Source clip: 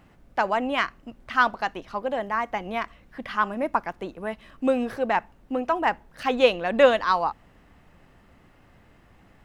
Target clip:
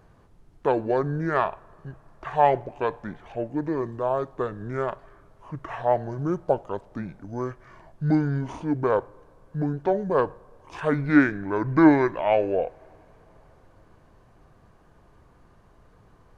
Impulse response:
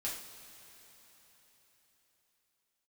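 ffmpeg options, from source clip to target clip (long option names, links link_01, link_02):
-filter_complex "[0:a]asetrate=25442,aresample=44100,asplit=2[link_01][link_02];[link_02]highpass=490,lowpass=2300[link_03];[1:a]atrim=start_sample=2205[link_04];[link_03][link_04]afir=irnorm=-1:irlink=0,volume=-18.5dB[link_05];[link_01][link_05]amix=inputs=2:normalize=0"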